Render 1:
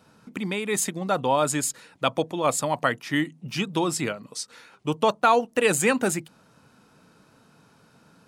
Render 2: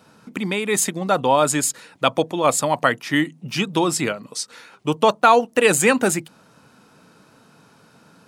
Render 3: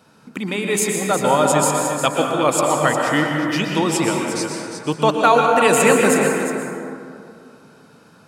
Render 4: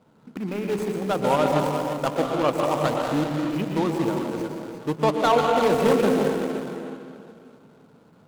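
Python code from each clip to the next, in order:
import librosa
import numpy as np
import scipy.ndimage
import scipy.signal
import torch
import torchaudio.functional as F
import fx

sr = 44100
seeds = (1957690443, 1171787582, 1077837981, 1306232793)

y1 = fx.low_shelf(x, sr, hz=74.0, db=-10.0)
y1 = y1 * librosa.db_to_amplitude(5.5)
y2 = y1 + 10.0 ** (-9.0 / 20.0) * np.pad(y1, (int(357 * sr / 1000.0), 0))[:len(y1)]
y2 = fx.rev_plate(y2, sr, seeds[0], rt60_s=2.4, hf_ratio=0.35, predelay_ms=105, drr_db=0.5)
y2 = y2 * librosa.db_to_amplitude(-1.0)
y3 = scipy.signal.medfilt(y2, 25)
y3 = y3 * librosa.db_to_amplitude(-3.5)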